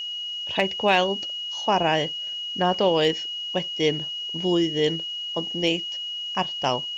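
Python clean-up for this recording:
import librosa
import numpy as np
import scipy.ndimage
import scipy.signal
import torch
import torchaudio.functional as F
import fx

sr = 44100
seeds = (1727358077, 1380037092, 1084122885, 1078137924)

y = fx.fix_declip(x, sr, threshold_db=-9.0)
y = fx.notch(y, sr, hz=2900.0, q=30.0)
y = fx.noise_reduce(y, sr, print_start_s=0.0, print_end_s=0.5, reduce_db=30.0)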